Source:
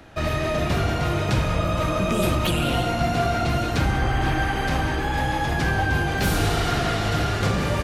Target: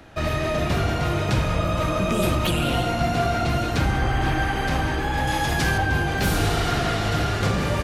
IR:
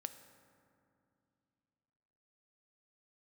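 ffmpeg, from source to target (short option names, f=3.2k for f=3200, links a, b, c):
-filter_complex "[0:a]asettb=1/sr,asplit=3[a][b][c];[a]atrim=end=5.274[d];[b]atrim=start=5.27:end=5.78,asetpts=PTS-STARTPTS,afade=t=in:d=0.004:c=qsin,afade=t=out:st=0.506:d=0.004:c=qsin,highshelf=f=3.5k:g=9.5[e];[c]atrim=start=5.776[f];[d][e]acrossfade=d=0.004:c1=hsin:c2=qsin[g];[g][f]acrossfade=d=0.004:c1=qsin:c2=hsin"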